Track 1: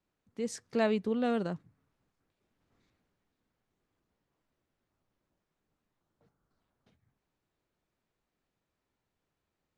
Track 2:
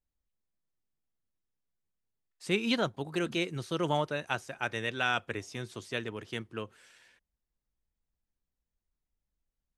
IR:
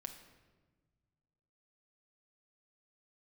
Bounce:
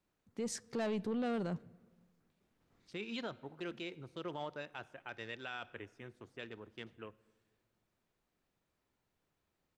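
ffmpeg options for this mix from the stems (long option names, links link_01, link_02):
-filter_complex "[0:a]asoftclip=type=tanh:threshold=-25.5dB,volume=0dB,asplit=2[link_01][link_02];[link_02]volume=-14dB[link_03];[1:a]afwtdn=0.00501,equalizer=frequency=150:width=1.7:gain=-5,adelay=450,volume=-12dB,asplit=2[link_04][link_05];[link_05]volume=-8dB[link_06];[2:a]atrim=start_sample=2205[link_07];[link_03][link_06]amix=inputs=2:normalize=0[link_08];[link_08][link_07]afir=irnorm=-1:irlink=0[link_09];[link_01][link_04][link_09]amix=inputs=3:normalize=0,alimiter=level_in=7dB:limit=-24dB:level=0:latency=1:release=22,volume=-7dB"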